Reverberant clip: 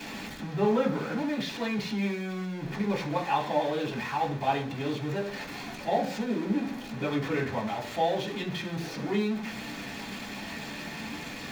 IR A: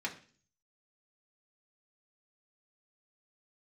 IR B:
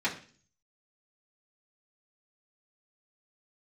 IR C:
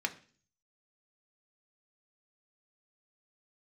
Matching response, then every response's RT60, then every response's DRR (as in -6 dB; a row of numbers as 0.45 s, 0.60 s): B; 0.45 s, 0.45 s, 0.45 s; -2.0 dB, -7.5 dB, 4.0 dB